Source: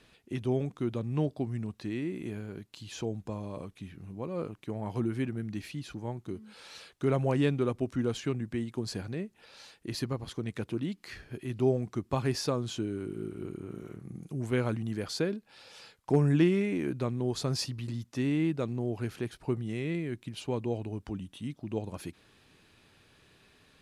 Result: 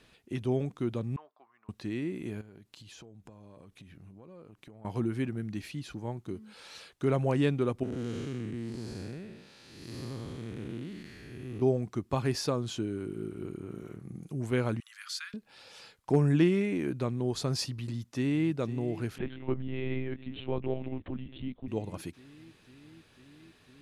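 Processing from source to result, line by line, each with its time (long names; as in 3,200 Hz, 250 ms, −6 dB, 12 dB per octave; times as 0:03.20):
0:01.16–0:01.69: four-pole ladder band-pass 1,200 Hz, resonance 65%
0:02.41–0:04.85: downward compressor 10 to 1, threshold −47 dBFS
0:07.83–0:11.62: spectrum smeared in time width 318 ms
0:14.80–0:15.34: Butterworth high-pass 1,200 Hz 48 dB per octave
0:17.83–0:18.51: delay throw 500 ms, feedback 85%, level −15.5 dB
0:19.18–0:21.68: one-pitch LPC vocoder at 8 kHz 130 Hz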